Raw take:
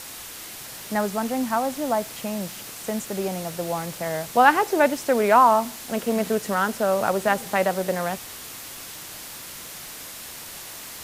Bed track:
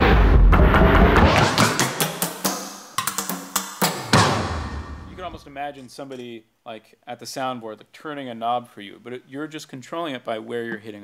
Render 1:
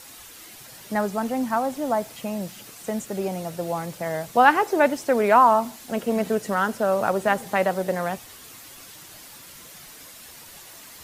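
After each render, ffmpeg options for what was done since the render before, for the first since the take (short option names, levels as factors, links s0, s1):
-af "afftdn=nr=8:nf=-39"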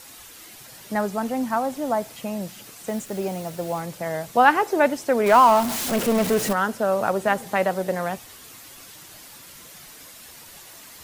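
-filter_complex "[0:a]asettb=1/sr,asplit=3[s0][s1][s2];[s0]atrim=end=2.884[s3];[s1]atrim=start=2.88:end=3.8,asetpts=PTS-STARTPTS,afade=t=in:d=0.004:c=qsin,afade=t=out:st=0.916:d=0.004:c=qsin,acrusher=bits=8:dc=4:mix=0:aa=0.000001[s4];[s2]atrim=start=3.796[s5];[s3][s4]acrossfade=d=0.004:c1=hsin:c2=qsin[s6];[s6][s5]acrossfade=d=0.004:c1=qsin:c2=hsin,asettb=1/sr,asplit=3[s7][s8][s9];[s7]atrim=end=5.264[s10];[s8]atrim=start=5.26:end=6.53,asetpts=PTS-STARTPTS,afade=t=in:d=0.004:c=qsin,afade=t=out:st=1.266:d=0.004:c=qsin,aeval=exprs='val(0)+0.5*0.075*sgn(val(0))':c=same[s11];[s9]atrim=start=6.526[s12];[s10][s11]acrossfade=d=0.004:c1=hsin:c2=qsin[s13];[s13][s12]acrossfade=d=0.004:c1=qsin:c2=hsin"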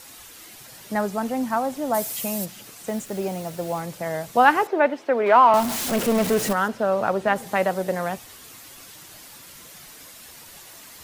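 -filter_complex "[0:a]asplit=3[s0][s1][s2];[s0]afade=t=out:st=1.93:d=0.02[s3];[s1]aemphasis=mode=production:type=75kf,afade=t=in:st=1.93:d=0.02,afade=t=out:st=2.44:d=0.02[s4];[s2]afade=t=in:st=2.44:d=0.02[s5];[s3][s4][s5]amix=inputs=3:normalize=0,asettb=1/sr,asplit=3[s6][s7][s8];[s6]atrim=end=4.674[s9];[s7]atrim=start=4.67:end=5.54,asetpts=PTS-STARTPTS,afade=t=in:d=0.004:c=qsin,afade=t=out:st=0.866:d=0.004:c=qsin,acrossover=split=230 3600:gain=0.0794 1 0.0794[s10][s11][s12];[s10][s11][s12]amix=inputs=3:normalize=0[s13];[s8]atrim=start=5.536[s14];[s9][s13]acrossfade=d=0.004:c1=hsin:c2=qsin[s15];[s15][s14]acrossfade=d=0.004:c1=qsin:c2=hsin,asettb=1/sr,asplit=3[s16][s17][s18];[s16]atrim=end=6.684[s19];[s17]atrim=start=6.68:end=7.36,asetpts=PTS-STARTPTS,afade=t=in:d=0.004:c=qsin,afade=t=out:st=0.676:d=0.004:c=qsin,acrossover=split=5200[s20][s21];[s21]acompressor=threshold=0.002:ratio=4:attack=1:release=60[s22];[s20][s22]amix=inputs=2:normalize=0[s23];[s18]atrim=start=7.356[s24];[s19][s23]acrossfade=d=0.004:c1=hsin:c2=qsin[s25];[s25][s24]acrossfade=d=0.004:c1=qsin:c2=hsin"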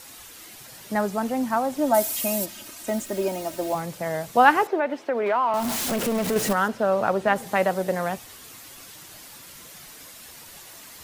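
-filter_complex "[0:a]asettb=1/sr,asplit=3[s0][s1][s2];[s0]atrim=end=1.784[s3];[s1]atrim=start=1.78:end=3.75,asetpts=PTS-STARTPTS,afade=t=in:d=0.004:c=qsin,afade=t=out:st=1.966:d=0.004:c=qsin,aecho=1:1:3.2:0.81,atrim=end_sample=86877[s4];[s2]atrim=start=3.746[s5];[s3][s4]acrossfade=d=0.004:c1=hsin:c2=qsin[s6];[s6][s5]acrossfade=d=0.004:c1=qsin:c2=hsin,asettb=1/sr,asplit=3[s7][s8][s9];[s7]atrim=end=4.754[s10];[s8]atrim=start=4.75:end=6.36,asetpts=PTS-STARTPTS,afade=t=in:d=0.004:c=qsin,afade=t=out:st=1.606:d=0.004:c=qsin,acompressor=threshold=0.0794:ratio=2.5:attack=3.2:release=140:knee=1:detection=peak[s11];[s9]atrim=start=6.356[s12];[s10][s11]acrossfade=d=0.004:c1=hsin:c2=qsin[s13];[s13][s12]acrossfade=d=0.004:c1=qsin:c2=hsin"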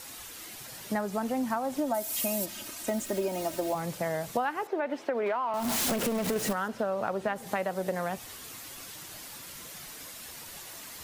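-af "acompressor=threshold=0.0501:ratio=16"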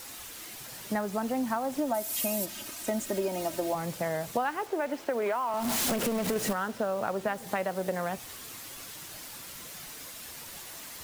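-af "acrusher=bits=7:mix=0:aa=0.000001"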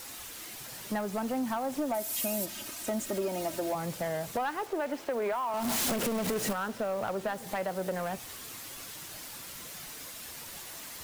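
-af "asoftclip=type=tanh:threshold=0.0631"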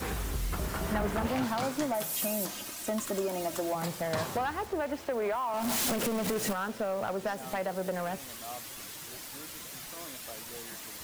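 -filter_complex "[1:a]volume=0.1[s0];[0:a][s0]amix=inputs=2:normalize=0"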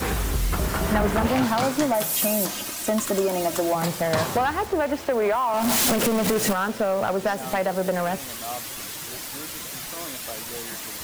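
-af "volume=2.82"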